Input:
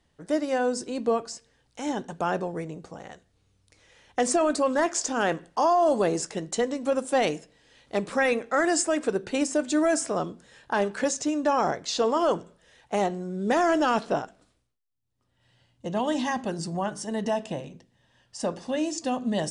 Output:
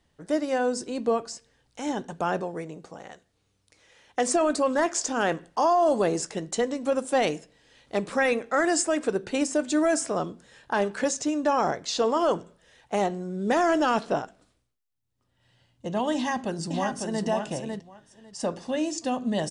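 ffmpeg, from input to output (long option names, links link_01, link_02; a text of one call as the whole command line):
ffmpeg -i in.wav -filter_complex "[0:a]asettb=1/sr,asplit=3[link_01][link_02][link_03];[link_01]atrim=end=2.414[link_04];[link_02]atrim=start=2.41:end=4.34,asetpts=PTS-STARTPTS,afade=type=in:duration=0.004:curve=qsin,afade=type=out:start_time=1.926:duration=0.004:curve=qsin,lowshelf=frequency=130:gain=-10[link_05];[link_03]atrim=start=4.336[link_06];[link_04][link_05]acrossfade=duration=0.004:curve1=hsin:curve2=qsin[link_07];[link_07][link_06]acrossfade=duration=0.004:curve1=qsin:curve2=hsin,asplit=2[link_08][link_09];[link_09]afade=type=in:start_time=16.15:duration=0.01,afade=type=out:start_time=17.24:duration=0.01,aecho=0:1:550|1100|1650:0.595662|0.0893493|0.0134024[link_10];[link_08][link_10]amix=inputs=2:normalize=0" out.wav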